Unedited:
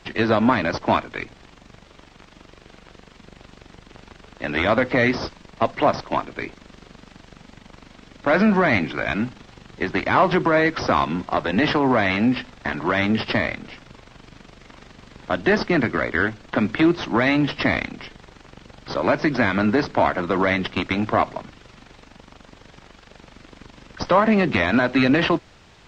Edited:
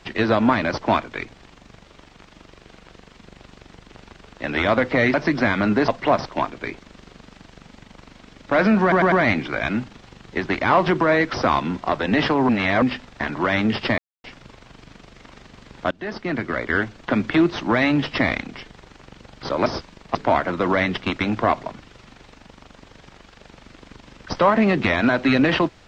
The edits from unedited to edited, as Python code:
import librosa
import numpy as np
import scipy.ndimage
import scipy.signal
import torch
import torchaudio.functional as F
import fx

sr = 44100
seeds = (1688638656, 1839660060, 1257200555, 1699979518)

y = fx.edit(x, sr, fx.swap(start_s=5.14, length_s=0.49, other_s=19.11, other_length_s=0.74),
    fx.stutter(start_s=8.57, slice_s=0.1, count=4),
    fx.reverse_span(start_s=11.94, length_s=0.33),
    fx.silence(start_s=13.43, length_s=0.26),
    fx.fade_in_from(start_s=15.36, length_s=0.88, floor_db=-21.0), tone=tone)